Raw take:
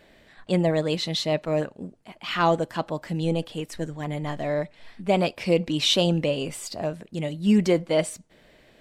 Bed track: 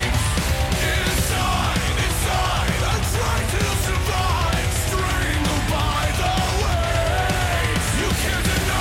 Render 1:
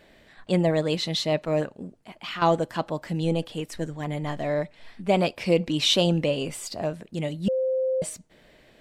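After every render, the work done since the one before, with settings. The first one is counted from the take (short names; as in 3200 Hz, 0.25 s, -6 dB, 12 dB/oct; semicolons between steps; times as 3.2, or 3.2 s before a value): 1.7–2.42 compressor 4:1, threshold -31 dBFS; 7.48–8.02 bleep 521 Hz -21.5 dBFS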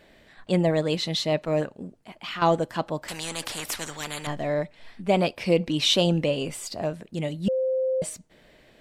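3.08–4.27 spectral compressor 4:1; 5.18–5.84 notch 7300 Hz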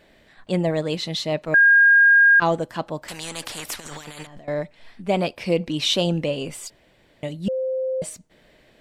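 1.54–2.4 bleep 1620 Hz -10 dBFS; 3.8–4.48 negative-ratio compressor -40 dBFS; 6.7–7.23 room tone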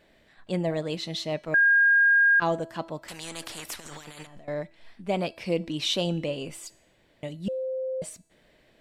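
resonator 330 Hz, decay 0.71 s, mix 50%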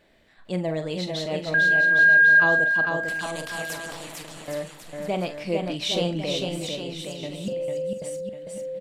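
doubler 44 ms -10.5 dB; bouncing-ball echo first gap 0.45 s, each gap 0.8×, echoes 5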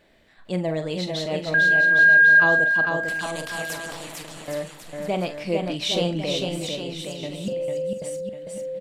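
gain +1.5 dB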